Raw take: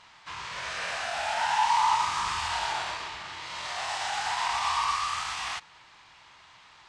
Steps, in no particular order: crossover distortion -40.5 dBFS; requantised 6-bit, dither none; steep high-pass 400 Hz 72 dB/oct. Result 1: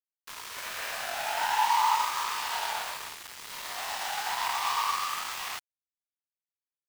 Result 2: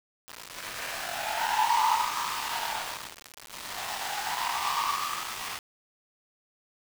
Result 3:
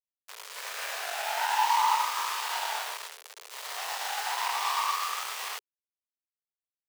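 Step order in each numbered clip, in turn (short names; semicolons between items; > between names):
requantised > steep high-pass > crossover distortion; steep high-pass > crossover distortion > requantised; crossover distortion > requantised > steep high-pass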